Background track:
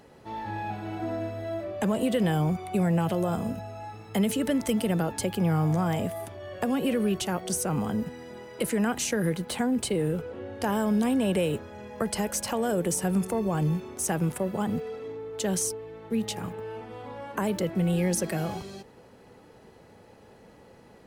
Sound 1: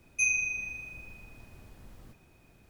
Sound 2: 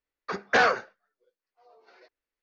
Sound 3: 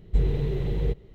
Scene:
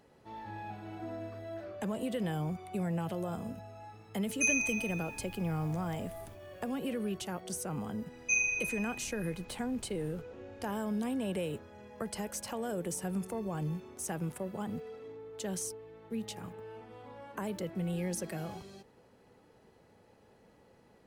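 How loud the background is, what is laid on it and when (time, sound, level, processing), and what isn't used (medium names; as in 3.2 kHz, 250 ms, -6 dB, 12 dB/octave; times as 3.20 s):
background track -9.5 dB
1.03 s: add 2 -11.5 dB + logarithmic tremolo 0.87 Hz, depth 28 dB
4.22 s: add 1 -3.5 dB + treble shelf 7.4 kHz +7 dB
8.10 s: add 1 -2 dB + elliptic low-pass 7 kHz
not used: 3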